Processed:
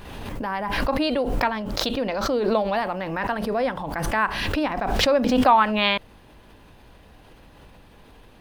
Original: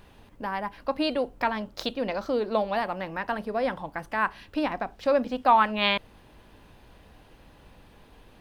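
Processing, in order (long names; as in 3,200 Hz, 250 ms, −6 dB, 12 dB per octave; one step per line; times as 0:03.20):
background raised ahead of every attack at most 30 dB per second
level +2.5 dB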